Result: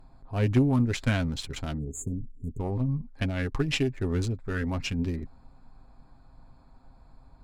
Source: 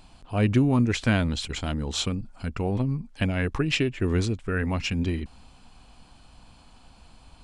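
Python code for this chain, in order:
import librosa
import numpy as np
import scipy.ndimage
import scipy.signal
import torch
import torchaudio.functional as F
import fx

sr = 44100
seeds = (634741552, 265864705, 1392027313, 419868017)

y = fx.wiener(x, sr, points=15)
y = fx.low_shelf(y, sr, hz=70.0, db=6.5)
y = fx.spec_erase(y, sr, start_s=1.78, length_s=0.81, low_hz=470.0, high_hz=6400.0)
y = fx.high_shelf(y, sr, hz=7100.0, db=6.0)
y = fx.cheby_harmonics(y, sr, harmonics=(2, 3, 5, 6), levels_db=(-16, -15, -27, -39), full_scale_db=-8.0)
y = y + 0.39 * np.pad(y, (int(7.5 * sr / 1000.0), 0))[:len(y)]
y = y * librosa.db_to_amplitude(-1.0)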